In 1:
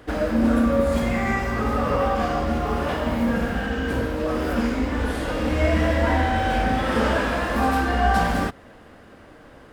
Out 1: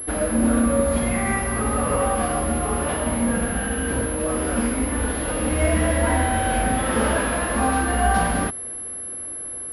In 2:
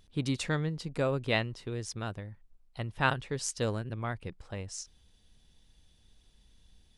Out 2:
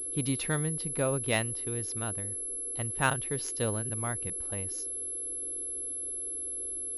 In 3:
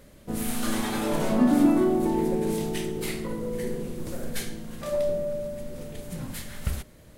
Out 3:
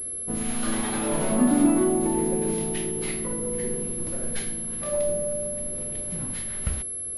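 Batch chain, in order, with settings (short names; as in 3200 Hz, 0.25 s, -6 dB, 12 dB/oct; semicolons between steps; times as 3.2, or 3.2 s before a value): band noise 280–510 Hz -53 dBFS; pulse-width modulation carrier 11000 Hz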